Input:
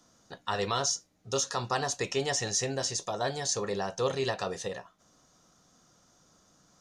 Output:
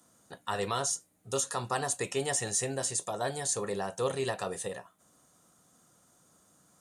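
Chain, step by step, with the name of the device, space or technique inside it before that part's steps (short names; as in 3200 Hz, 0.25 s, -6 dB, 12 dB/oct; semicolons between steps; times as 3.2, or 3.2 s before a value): budget condenser microphone (HPF 70 Hz; resonant high shelf 7200 Hz +9.5 dB, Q 3); gain -1.5 dB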